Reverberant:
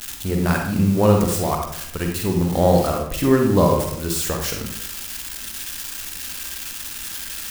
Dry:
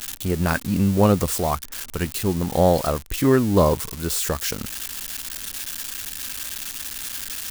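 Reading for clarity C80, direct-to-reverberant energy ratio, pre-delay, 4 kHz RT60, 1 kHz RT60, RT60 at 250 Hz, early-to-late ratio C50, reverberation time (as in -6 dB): 7.0 dB, 1.5 dB, 39 ms, 0.45 s, 0.70 s, 0.80 s, 3.0 dB, 0.70 s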